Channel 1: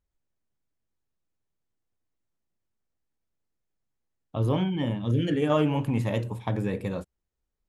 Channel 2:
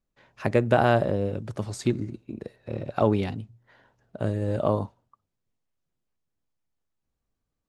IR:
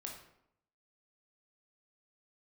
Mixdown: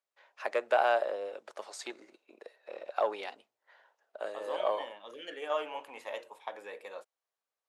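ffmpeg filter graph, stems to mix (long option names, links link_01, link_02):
-filter_complex "[0:a]volume=-5.5dB[link_01];[1:a]acontrast=51,volume=-8.5dB[link_02];[link_01][link_02]amix=inputs=2:normalize=0,highpass=frequency=550:width=0.5412,highpass=frequency=550:width=1.3066,highshelf=frequency=8000:gain=-7.5"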